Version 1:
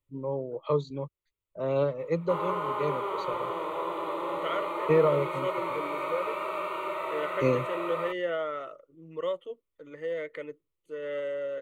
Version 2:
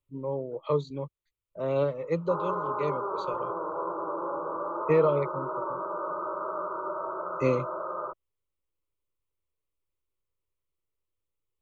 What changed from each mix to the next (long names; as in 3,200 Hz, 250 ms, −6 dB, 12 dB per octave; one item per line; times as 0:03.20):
second voice: muted
background: add linear-phase brick-wall low-pass 1,600 Hz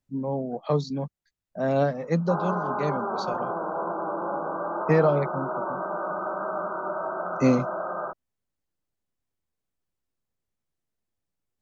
master: remove phaser with its sweep stopped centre 1,100 Hz, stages 8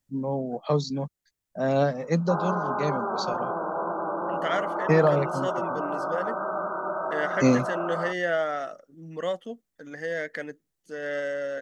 second voice: unmuted
master: add high-shelf EQ 5,000 Hz +10.5 dB